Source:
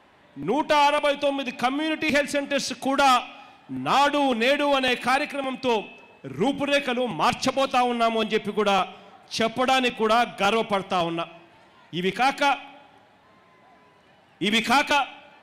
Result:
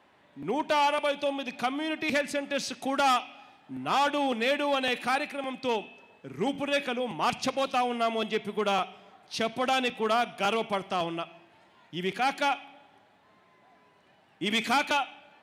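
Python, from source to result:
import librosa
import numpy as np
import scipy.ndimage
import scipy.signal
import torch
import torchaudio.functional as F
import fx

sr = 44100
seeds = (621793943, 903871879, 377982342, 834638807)

y = fx.highpass(x, sr, hz=97.0, slope=6)
y = y * 10.0 ** (-5.5 / 20.0)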